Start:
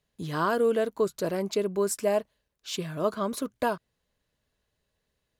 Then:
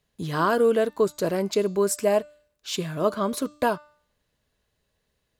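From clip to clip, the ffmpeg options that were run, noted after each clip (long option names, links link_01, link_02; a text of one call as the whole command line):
ffmpeg -i in.wav -af "bandreject=frequency=297.3:width_type=h:width=4,bandreject=frequency=594.6:width_type=h:width=4,bandreject=frequency=891.9:width_type=h:width=4,bandreject=frequency=1189.2:width_type=h:width=4,bandreject=frequency=1486.5:width_type=h:width=4,bandreject=frequency=1783.8:width_type=h:width=4,bandreject=frequency=2081.1:width_type=h:width=4,bandreject=frequency=2378.4:width_type=h:width=4,bandreject=frequency=2675.7:width_type=h:width=4,bandreject=frequency=2973:width_type=h:width=4,bandreject=frequency=3270.3:width_type=h:width=4,bandreject=frequency=3567.6:width_type=h:width=4,bandreject=frequency=3864.9:width_type=h:width=4,bandreject=frequency=4162.2:width_type=h:width=4,bandreject=frequency=4459.5:width_type=h:width=4,bandreject=frequency=4756.8:width_type=h:width=4,bandreject=frequency=5054.1:width_type=h:width=4,bandreject=frequency=5351.4:width_type=h:width=4,bandreject=frequency=5648.7:width_type=h:width=4,bandreject=frequency=5946:width_type=h:width=4,bandreject=frequency=6243.3:width_type=h:width=4,bandreject=frequency=6540.6:width_type=h:width=4,bandreject=frequency=6837.9:width_type=h:width=4,bandreject=frequency=7135.2:width_type=h:width=4,bandreject=frequency=7432.5:width_type=h:width=4,bandreject=frequency=7729.8:width_type=h:width=4,bandreject=frequency=8027.1:width_type=h:width=4,bandreject=frequency=8324.4:width_type=h:width=4,volume=4dB" out.wav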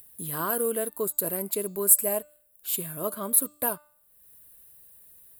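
ffmpeg -i in.wav -af "aexciter=amount=11.9:drive=10:freq=9000,acompressor=mode=upward:threshold=-32dB:ratio=2.5,volume=-8.5dB" out.wav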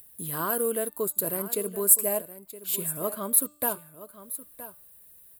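ffmpeg -i in.wav -af "aecho=1:1:969:0.188" out.wav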